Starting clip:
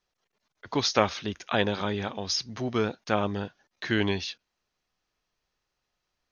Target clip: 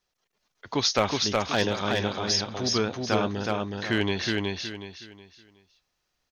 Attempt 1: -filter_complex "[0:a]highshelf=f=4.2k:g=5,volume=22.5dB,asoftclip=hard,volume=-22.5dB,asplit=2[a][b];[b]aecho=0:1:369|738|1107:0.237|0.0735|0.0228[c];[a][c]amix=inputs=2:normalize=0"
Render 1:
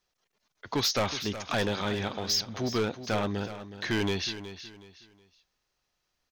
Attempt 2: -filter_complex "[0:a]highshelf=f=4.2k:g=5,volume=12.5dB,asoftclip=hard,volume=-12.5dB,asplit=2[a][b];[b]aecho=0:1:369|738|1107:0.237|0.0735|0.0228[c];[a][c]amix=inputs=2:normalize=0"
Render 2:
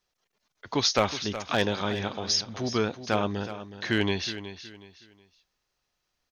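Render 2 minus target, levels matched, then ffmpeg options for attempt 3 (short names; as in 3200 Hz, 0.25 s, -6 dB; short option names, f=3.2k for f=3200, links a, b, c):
echo-to-direct -10 dB
-filter_complex "[0:a]highshelf=f=4.2k:g=5,volume=12.5dB,asoftclip=hard,volume=-12.5dB,asplit=2[a][b];[b]aecho=0:1:369|738|1107|1476:0.75|0.232|0.0721|0.0223[c];[a][c]amix=inputs=2:normalize=0"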